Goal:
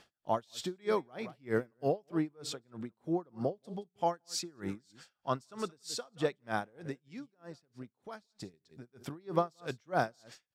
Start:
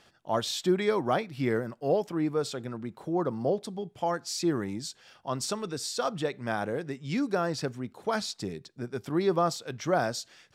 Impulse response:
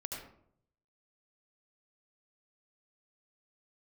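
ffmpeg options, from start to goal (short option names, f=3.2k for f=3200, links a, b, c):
-filter_complex "[0:a]asettb=1/sr,asplit=3[a][b][c];[a]atrim=end=4.374[d];[b]atrim=start=4.37:end=5.65,asetpts=PTS-STARTPTS,afade=t=in:d=0.004:c=qsin,afade=t=out:st=1.276:d=0.004:c=qsin,equalizer=f=1.4k:t=o:w=0.3:g=7[e];[c]atrim=start=5.646[f];[d][e]acrossfade=d=0.004:c1=hsin:c2=qsin[g];[g][f]acrossfade=d=0.004:c1=qsin:c2=hsin,asettb=1/sr,asplit=3[h][i][j];[h]atrim=end=7.084[k];[i]atrim=start=7.08:end=8.54,asetpts=PTS-STARTPTS,afade=t=in:d=0.004:c=qsin,afade=t=out:st=1.456:d=0.004:c=qsin,acompressor=threshold=-41dB:ratio=6[l];[j]atrim=start=8.536[m];[k][l]acrossfade=d=0.004:c1=hsin:c2=qsin[n];[n][m]acrossfade=d=0.004:c1=qsin:c2=hsin,aecho=1:1:175:0.133,aeval=exprs='val(0)*pow(10,-33*(0.5-0.5*cos(2*PI*3.2*n/s))/20)':c=same"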